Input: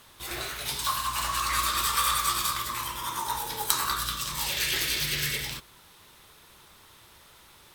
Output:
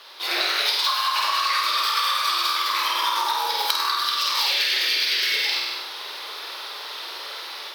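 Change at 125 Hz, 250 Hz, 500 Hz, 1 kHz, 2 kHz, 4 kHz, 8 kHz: under -30 dB, -2.0 dB, +6.0 dB, +6.5 dB, +7.5 dB, +10.0 dB, -3.5 dB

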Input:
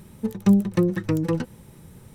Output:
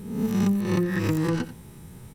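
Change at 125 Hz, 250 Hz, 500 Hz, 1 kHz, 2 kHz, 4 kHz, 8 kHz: -1.5 dB, -2.5 dB, -2.5 dB, +1.5 dB, +4.0 dB, +4.0 dB, +3.5 dB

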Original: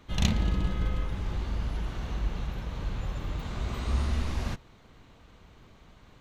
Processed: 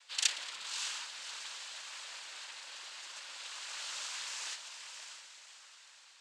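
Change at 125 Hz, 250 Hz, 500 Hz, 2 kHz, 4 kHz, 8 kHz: under -40 dB, under -35 dB, -19.5 dB, 0.0 dB, +4.5 dB, no reading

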